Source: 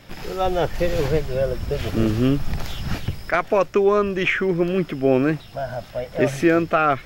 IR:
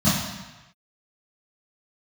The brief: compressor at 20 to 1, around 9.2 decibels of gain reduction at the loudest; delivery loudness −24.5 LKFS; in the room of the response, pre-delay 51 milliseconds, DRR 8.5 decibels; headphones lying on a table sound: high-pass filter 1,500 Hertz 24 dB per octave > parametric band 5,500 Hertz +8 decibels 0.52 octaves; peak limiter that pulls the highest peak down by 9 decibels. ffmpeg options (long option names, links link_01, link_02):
-filter_complex "[0:a]acompressor=threshold=-22dB:ratio=20,alimiter=limit=-20dB:level=0:latency=1,asplit=2[link_01][link_02];[1:a]atrim=start_sample=2205,adelay=51[link_03];[link_02][link_03]afir=irnorm=-1:irlink=0,volume=-25.5dB[link_04];[link_01][link_04]amix=inputs=2:normalize=0,highpass=frequency=1500:width=0.5412,highpass=frequency=1500:width=1.3066,equalizer=frequency=5500:width_type=o:width=0.52:gain=8,volume=13.5dB"